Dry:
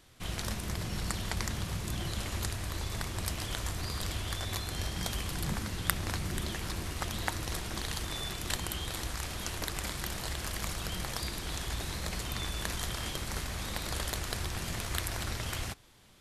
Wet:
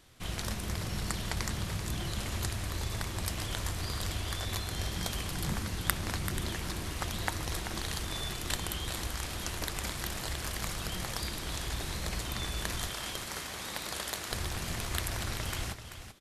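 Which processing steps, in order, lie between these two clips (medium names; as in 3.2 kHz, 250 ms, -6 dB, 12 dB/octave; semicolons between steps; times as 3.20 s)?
12.87–14.31 s: high-pass 330 Hz 6 dB/octave; delay 386 ms -10 dB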